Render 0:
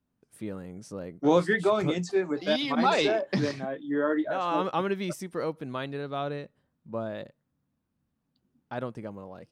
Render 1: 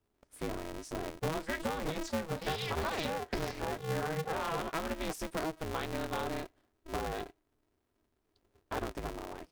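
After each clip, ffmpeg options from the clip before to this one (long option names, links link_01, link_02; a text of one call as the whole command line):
ffmpeg -i in.wav -af "acompressor=threshold=-31dB:ratio=16,aeval=exprs='val(0)*sgn(sin(2*PI*160*n/s))':channel_layout=same" out.wav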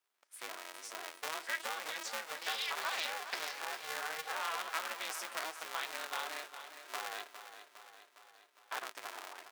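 ffmpeg -i in.wav -filter_complex "[0:a]highpass=1200,asplit=2[link_01][link_02];[link_02]aecho=0:1:408|816|1224|1632|2040|2448|2856:0.282|0.166|0.0981|0.0579|0.0342|0.0201|0.0119[link_03];[link_01][link_03]amix=inputs=2:normalize=0,volume=2.5dB" out.wav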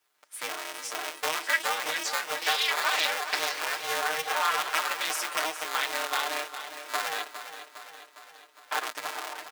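ffmpeg -i in.wav -af "aecho=1:1:6.6:0.83,volume=8.5dB" out.wav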